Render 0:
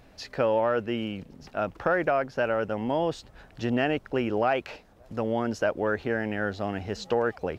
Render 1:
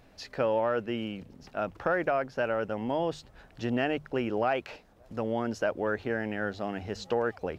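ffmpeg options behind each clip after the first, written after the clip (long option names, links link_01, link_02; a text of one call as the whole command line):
ffmpeg -i in.wav -af "bandreject=frequency=50:width_type=h:width=6,bandreject=frequency=100:width_type=h:width=6,bandreject=frequency=150:width_type=h:width=6,volume=-3dB" out.wav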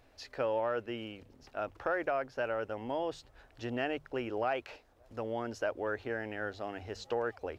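ffmpeg -i in.wav -af "equalizer=frequency=180:width=2.7:gain=-14.5,volume=-4.5dB" out.wav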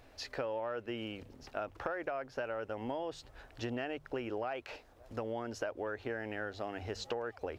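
ffmpeg -i in.wav -af "acompressor=threshold=-39dB:ratio=6,volume=4.5dB" out.wav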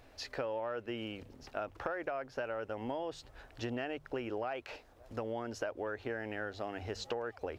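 ffmpeg -i in.wav -af anull out.wav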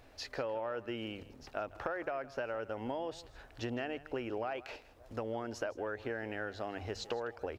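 ffmpeg -i in.wav -af "aecho=1:1:160:0.126" out.wav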